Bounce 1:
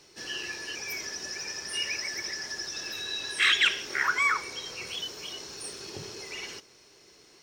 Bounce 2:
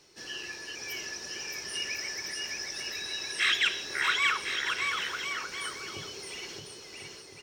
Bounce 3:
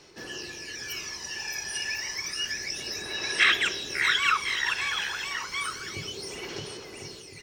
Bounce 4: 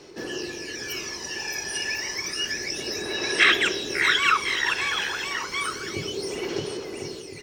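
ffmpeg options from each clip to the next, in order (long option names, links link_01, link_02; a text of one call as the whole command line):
ffmpeg -i in.wav -af "aecho=1:1:620|1054|1358|1570|1719:0.631|0.398|0.251|0.158|0.1,volume=-3.5dB" out.wav
ffmpeg -i in.wav -af "aphaser=in_gain=1:out_gain=1:delay=1.2:decay=0.57:speed=0.3:type=sinusoidal,volume=1.5dB" out.wav
ffmpeg -i in.wav -af "equalizer=frequency=360:width=0.75:gain=8.5,volume=2.5dB" out.wav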